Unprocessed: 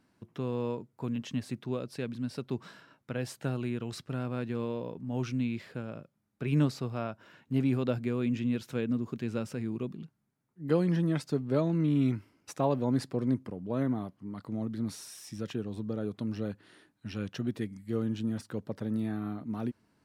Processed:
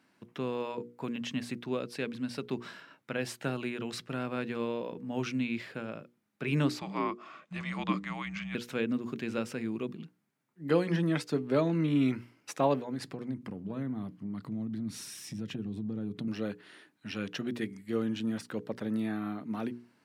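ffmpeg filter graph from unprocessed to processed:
-filter_complex "[0:a]asettb=1/sr,asplit=3[s0][s1][s2];[s0]atrim=end=6.794[s3];[s1]atrim=start=6.79:end=8.55,asetpts=PTS-STARTPTS,afade=t=in:d=0.004:c=qsin,afade=t=out:st=1.756:d=0.004:c=qsin,afreqshift=-310,highpass=160,equalizer=f=330:t=q:w=4:g=7,equalizer=f=600:t=q:w=4:g=6,equalizer=f=1100:t=q:w=4:g=8,lowpass=f=8600:w=0.5412,lowpass=f=8600:w=1.3066[s4];[s2]atrim=start=8.546[s5];[s3][s4]acrossfade=d=0.004:c1=hsin:c2=qsin[s6];[s6][s5]acrossfade=d=0.004:c1=qsin:c2=hsin,asettb=1/sr,asplit=3[s7][s8][s9];[s7]atrim=end=12.794[s10];[s8]atrim=start=12.79:end=16.28,asetpts=PTS-STARTPTS,afade=t=in:d=0.004:c=qsin,afade=t=out:st=3.486:d=0.004:c=qsin,asubboost=boost=10.5:cutoff=240,acompressor=threshold=0.02:ratio=3:attack=3.2:release=140:knee=1:detection=peak[s11];[s9]atrim=start=16.276[s12];[s10][s11]acrossfade=d=0.004:c1=hsin:c2=qsin[s13];[s13][s12]acrossfade=d=0.004:c1=qsin:c2=hsin,highpass=170,equalizer=f=2300:t=o:w=1.5:g=5.5,bandreject=f=60:t=h:w=6,bandreject=f=120:t=h:w=6,bandreject=f=180:t=h:w=6,bandreject=f=240:t=h:w=6,bandreject=f=300:t=h:w=6,bandreject=f=360:t=h:w=6,bandreject=f=420:t=h:w=6,bandreject=f=480:t=h:w=6,volume=1.19"

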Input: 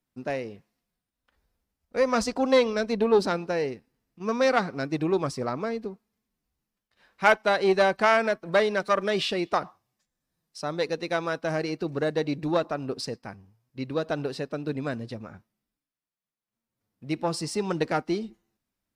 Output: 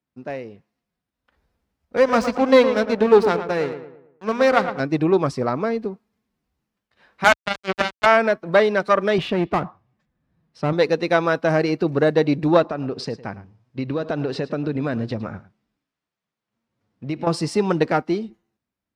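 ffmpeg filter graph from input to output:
-filter_complex "[0:a]asettb=1/sr,asplit=3[s0][s1][s2];[s0]atrim=end=1.974[s3];[s1]atrim=start=1.97:end=4.8,asetpts=PTS-STARTPTS,afade=t=in:d=0.004:c=qsin,afade=t=out:st=2.826:d=0.004:c=qsin,aeval=exprs='sgn(val(0))*max(abs(val(0))-0.02,0)':c=same,asplit=2[s4][s5];[s5]adelay=112,lowpass=f=2300:p=1,volume=0.355,asplit=2[s6][s7];[s7]adelay=112,lowpass=f=2300:p=1,volume=0.42,asplit=2[s8][s9];[s9]adelay=112,lowpass=f=2300:p=1,volume=0.42,asplit=2[s10][s11];[s11]adelay=112,lowpass=f=2300:p=1,volume=0.42,asplit=2[s12][s13];[s13]adelay=112,lowpass=f=2300:p=1,volume=0.42[s14];[s4][s6][s8][s10][s12][s14]amix=inputs=6:normalize=0,atrim=end_sample=124803[s15];[s2]atrim=start=4.796[s16];[s3][s15]acrossfade=d=0.004:c1=hsin:c2=qsin[s17];[s17][s16]acrossfade=d=0.004:c1=qsin:c2=hsin,asettb=1/sr,asplit=3[s18][s19][s20];[s18]atrim=end=7.244[s21];[s19]atrim=start=7.24:end=8.06,asetpts=PTS-STARTPTS,afade=t=in:d=0.004:c=qsin,afade=t=out:st=0.816:d=0.004:c=qsin,lowpass=3000,equalizer=f=490:t=o:w=0.39:g=-12,acrusher=bits=2:mix=0:aa=0.5[s22];[s20]atrim=start=8.056[s23];[s21][s22]acrossfade=d=0.004:c1=hsin:c2=qsin[s24];[s24][s23]acrossfade=d=0.004:c1=qsin:c2=hsin,asettb=1/sr,asplit=3[s25][s26][s27];[s25]atrim=end=9.184[s28];[s26]atrim=start=9.18:end=10.73,asetpts=PTS-STARTPTS,afade=t=in:d=0.004:c=qsin,afade=t=out:st=1.546:d=0.004:c=qsin,bass=f=250:g=8,treble=f=4000:g=-15,aeval=exprs='clip(val(0),-1,0.0266)':c=same[s29];[s27]atrim=start=10.726[s30];[s28][s29]acrossfade=d=0.004:c1=hsin:c2=qsin[s31];[s31][s30]acrossfade=d=0.004:c1=qsin:c2=hsin,asettb=1/sr,asplit=3[s32][s33][s34];[s32]atrim=end=12.624[s35];[s33]atrim=start=12.62:end=17.27,asetpts=PTS-STARTPTS,afade=t=in:d=0.004:c=qsin,afade=t=out:st=4.646:d=0.004:c=qsin,lowpass=7100,acompressor=threshold=0.0282:ratio=5:attack=3.2:release=140:knee=1:detection=peak,aecho=1:1:108:0.141,atrim=end_sample=205065[s36];[s34]atrim=start=17.266[s37];[s35][s36]acrossfade=d=0.004:c1=hsin:c2=qsin[s38];[s38][s37]acrossfade=d=0.004:c1=qsin:c2=hsin,highpass=51,highshelf=f=5000:g=-12,dynaudnorm=f=280:g=9:m=3.76"

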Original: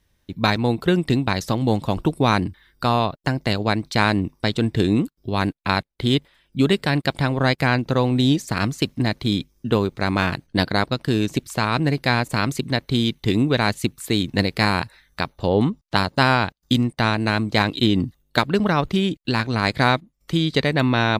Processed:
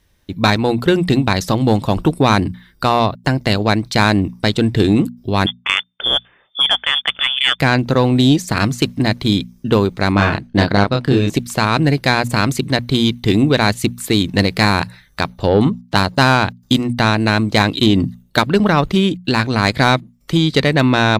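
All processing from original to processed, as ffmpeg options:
-filter_complex "[0:a]asettb=1/sr,asplit=3[s0][s1][s2];[s0]atrim=end=5.464[s3];[s1]atrim=start=5.46:end=7.6,asetpts=PTS-STARTPTS,afade=t=in:d=0.004:c=qsin,afade=t=out:st=2.136:d=0.004:c=qsin,lowshelf=f=490:g=-6,lowpass=f=3100:t=q:w=0.5098,lowpass=f=3100:t=q:w=0.6013,lowpass=f=3100:t=q:w=0.9,lowpass=f=3100:t=q:w=2.563,afreqshift=-3600[s4];[s2]atrim=start=7.596[s5];[s3][s4]acrossfade=d=0.004:c1=hsin:c2=qsin[s6];[s6][s5]acrossfade=d=0.004:c1=qsin:c2=hsin,asettb=1/sr,asplit=3[s7][s8][s9];[s7]atrim=end=10.124[s10];[s8]atrim=start=10.12:end=11.3,asetpts=PTS-STARTPTS,afade=t=in:d=0.004:c=qsin,afade=t=out:st=1.176:d=0.004:c=qsin,lowpass=f=2700:p=1,agate=range=0.0224:threshold=0.00141:ratio=3:release=100:detection=peak,asplit=2[s11][s12];[s12]adelay=30,volume=0.668[s13];[s11][s13]amix=inputs=2:normalize=0,atrim=end_sample=52038[s14];[s9]atrim=start=11.296[s15];[s10][s14]acrossfade=d=0.004:c1=hsin:c2=qsin[s16];[s16][s15]acrossfade=d=0.004:c1=qsin:c2=hsin,bandreject=f=60:t=h:w=6,bandreject=f=120:t=h:w=6,bandreject=f=180:t=h:w=6,bandreject=f=240:t=h:w=6,acontrast=77"

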